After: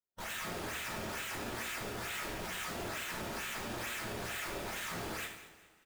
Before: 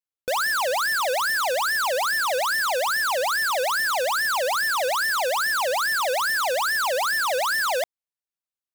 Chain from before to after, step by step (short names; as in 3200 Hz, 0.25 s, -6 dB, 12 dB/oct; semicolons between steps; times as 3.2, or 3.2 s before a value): spectral contrast lowered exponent 0.11; elliptic band-pass 1300–2700 Hz, stop band 50 dB; comb 6.2 ms, depth 56%; limiter -31.5 dBFS, peak gain reduction 9 dB; decimation with a swept rate 15×, swing 100% 1.5 Hz; time stretch by phase-locked vocoder 0.67×; wavefolder -38.5 dBFS; feedback echo 0.198 s, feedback 37%, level -16 dB; two-slope reverb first 0.65 s, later 2.3 s, from -18 dB, DRR -1 dB